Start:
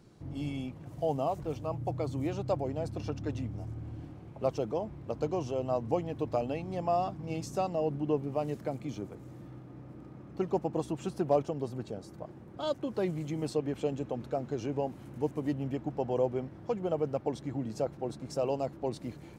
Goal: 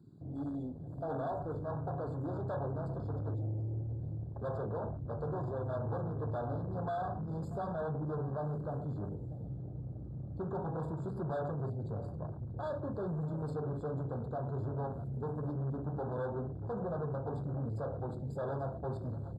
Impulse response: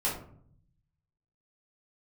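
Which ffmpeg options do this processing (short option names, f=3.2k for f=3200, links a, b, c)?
-filter_complex "[0:a]acrossover=split=120|2500[a][b][c];[a]acompressor=threshold=-54dB:ratio=6[d];[d][b][c]amix=inputs=3:normalize=0,asubboost=boost=9:cutoff=91,asplit=2[e][f];[1:a]atrim=start_sample=2205,afade=t=out:st=0.19:d=0.01,atrim=end_sample=8820[g];[f][g]afir=irnorm=-1:irlink=0,volume=-11dB[h];[e][h]amix=inputs=2:normalize=0,asoftclip=type=tanh:threshold=-33.5dB,highpass=66,asplit=2[i][j];[j]adelay=639,lowpass=f=1.8k:p=1,volume=-14dB,asplit=2[k][l];[l]adelay=639,lowpass=f=1.8k:p=1,volume=0.38,asplit=2[m][n];[n]adelay=639,lowpass=f=1.8k:p=1,volume=0.38,asplit=2[o][p];[p]adelay=639,lowpass=f=1.8k:p=1,volume=0.38[q];[i][k][m][o][q]amix=inputs=5:normalize=0,afwtdn=0.00501,afftfilt=real='re*eq(mod(floor(b*sr/1024/1700),2),0)':imag='im*eq(mod(floor(b*sr/1024/1700),2),0)':win_size=1024:overlap=0.75"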